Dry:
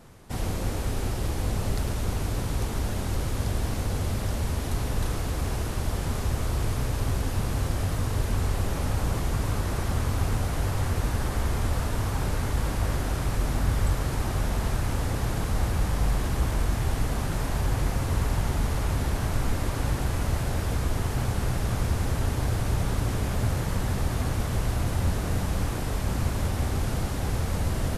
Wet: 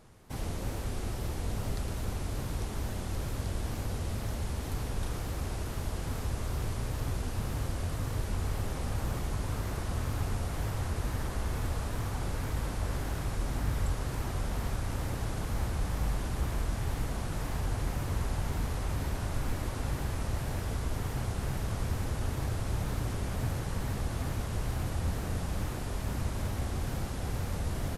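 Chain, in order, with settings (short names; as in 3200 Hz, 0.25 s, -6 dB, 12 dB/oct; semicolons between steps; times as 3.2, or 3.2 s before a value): wow and flutter 130 cents; gain -6.5 dB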